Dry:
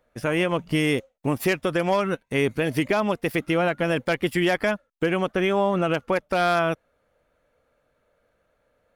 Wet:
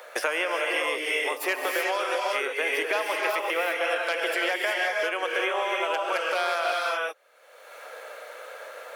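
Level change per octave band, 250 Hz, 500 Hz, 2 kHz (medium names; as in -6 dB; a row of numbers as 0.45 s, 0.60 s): -16.0 dB, -4.0 dB, +2.5 dB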